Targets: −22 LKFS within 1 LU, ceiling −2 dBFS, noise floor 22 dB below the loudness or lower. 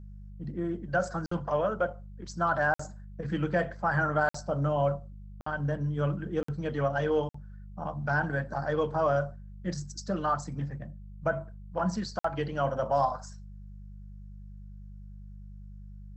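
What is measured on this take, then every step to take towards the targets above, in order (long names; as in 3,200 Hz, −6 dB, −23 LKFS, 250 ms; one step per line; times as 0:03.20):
number of dropouts 7; longest dropout 54 ms; mains hum 50 Hz; hum harmonics up to 200 Hz; level of the hum −43 dBFS; integrated loudness −31.0 LKFS; sample peak −14.0 dBFS; target loudness −22.0 LKFS
→ repair the gap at 0:01.26/0:02.74/0:04.29/0:05.41/0:06.43/0:07.29/0:12.19, 54 ms
hum removal 50 Hz, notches 4
level +9 dB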